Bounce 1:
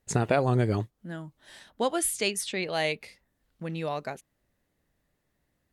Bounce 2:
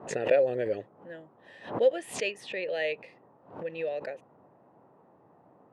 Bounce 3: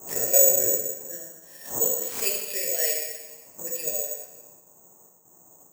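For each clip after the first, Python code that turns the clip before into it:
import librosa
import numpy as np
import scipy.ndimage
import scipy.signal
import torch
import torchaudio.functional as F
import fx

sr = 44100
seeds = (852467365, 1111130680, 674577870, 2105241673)

y1 = fx.vowel_filter(x, sr, vowel='e')
y1 = fx.dmg_noise_band(y1, sr, seeds[0], low_hz=110.0, high_hz=930.0, level_db=-68.0)
y1 = fx.pre_swell(y1, sr, db_per_s=130.0)
y1 = y1 * librosa.db_to_amplitude(8.0)
y2 = fx.step_gate(y1, sr, bpm=180, pattern='xxx.xxxxx..xx', floor_db=-12.0, edge_ms=4.5)
y2 = fx.rev_plate(y2, sr, seeds[1], rt60_s=1.2, hf_ratio=0.95, predelay_ms=0, drr_db=-3.0)
y2 = (np.kron(y2[::6], np.eye(6)[0]) * 6)[:len(y2)]
y2 = y2 * librosa.db_to_amplitude(-6.5)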